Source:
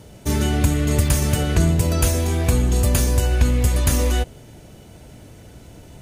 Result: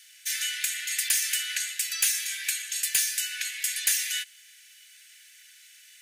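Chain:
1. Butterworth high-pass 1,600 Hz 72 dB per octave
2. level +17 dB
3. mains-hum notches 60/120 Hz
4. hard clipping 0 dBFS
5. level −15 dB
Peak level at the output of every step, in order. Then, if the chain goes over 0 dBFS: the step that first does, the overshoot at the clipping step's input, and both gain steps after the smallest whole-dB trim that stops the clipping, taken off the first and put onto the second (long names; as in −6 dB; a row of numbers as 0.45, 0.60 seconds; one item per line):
−9.5, +7.5, +7.5, 0.0, −15.0 dBFS
step 2, 7.5 dB
step 2 +9 dB, step 5 −7 dB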